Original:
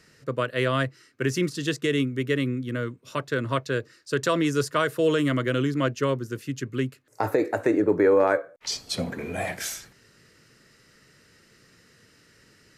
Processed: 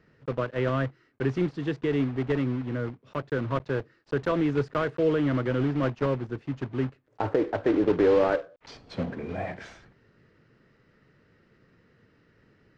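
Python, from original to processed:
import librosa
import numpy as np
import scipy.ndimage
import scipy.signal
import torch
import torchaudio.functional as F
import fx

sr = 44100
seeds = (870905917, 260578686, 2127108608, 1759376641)

y = fx.block_float(x, sr, bits=3)
y = fx.spacing_loss(y, sr, db_at_10k=41)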